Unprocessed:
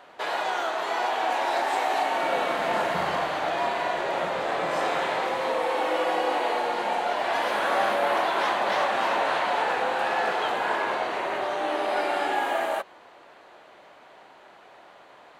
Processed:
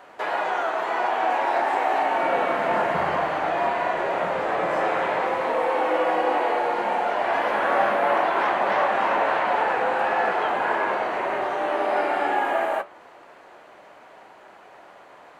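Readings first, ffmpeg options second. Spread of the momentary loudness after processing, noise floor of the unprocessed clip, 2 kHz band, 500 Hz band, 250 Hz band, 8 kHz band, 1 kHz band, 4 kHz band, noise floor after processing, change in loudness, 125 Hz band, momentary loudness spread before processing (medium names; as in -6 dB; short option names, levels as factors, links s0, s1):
4 LU, -51 dBFS, +2.0 dB, +3.0 dB, +3.0 dB, no reading, +3.0 dB, -4.5 dB, -48 dBFS, +2.5 dB, +3.0 dB, 4 LU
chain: -filter_complex "[0:a]equalizer=f=3700:w=1.9:g=-6.5,acrossover=split=3400[s0][s1];[s1]acompressor=threshold=0.00141:ratio=6[s2];[s0][s2]amix=inputs=2:normalize=0,flanger=delay=9.3:depth=5.4:regen=-67:speed=0.21:shape=sinusoidal,volume=2.37"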